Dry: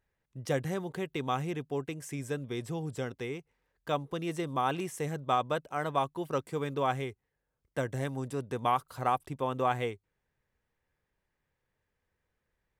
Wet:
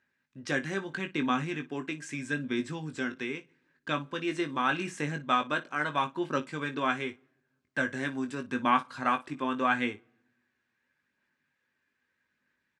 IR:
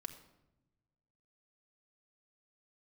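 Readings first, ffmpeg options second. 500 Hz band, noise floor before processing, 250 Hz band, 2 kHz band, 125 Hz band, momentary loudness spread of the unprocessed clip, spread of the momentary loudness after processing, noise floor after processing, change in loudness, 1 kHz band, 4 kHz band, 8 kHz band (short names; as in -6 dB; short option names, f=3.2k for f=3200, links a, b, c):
-2.5 dB, -83 dBFS, +4.5 dB, +10.0 dB, -4.0 dB, 9 LU, 9 LU, -80 dBFS, +2.0 dB, +1.0 dB, +4.5 dB, -0.5 dB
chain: -filter_complex "[0:a]aphaser=in_gain=1:out_gain=1:delay=2.9:decay=0.28:speed=0.8:type=sinusoidal,highpass=190,equalizer=f=250:t=q:w=4:g=8,equalizer=f=460:t=q:w=4:g=-9,equalizer=f=730:t=q:w=4:g=-8,equalizer=f=1.6k:t=q:w=4:g=10,equalizer=f=2.5k:t=q:w=4:g=6,equalizer=f=4k:t=q:w=4:g=4,lowpass=f=7.8k:w=0.5412,lowpass=f=7.8k:w=1.3066,aecho=1:1:20|57:0.447|0.126,asplit=2[a][b];[1:a]atrim=start_sample=2205,asetrate=48510,aresample=44100[c];[b][c]afir=irnorm=-1:irlink=0,volume=-13.5dB[d];[a][d]amix=inputs=2:normalize=0"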